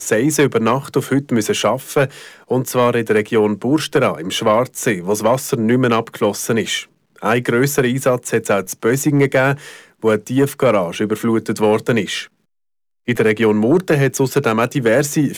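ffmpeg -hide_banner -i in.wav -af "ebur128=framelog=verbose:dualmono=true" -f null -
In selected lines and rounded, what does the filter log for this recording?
Integrated loudness:
  I:         -13.9 LUFS
  Threshold: -24.0 LUFS
Loudness range:
  LRA:         1.3 LU
  Threshold: -34.3 LUFS
  LRA low:   -15.0 LUFS
  LRA high:  -13.8 LUFS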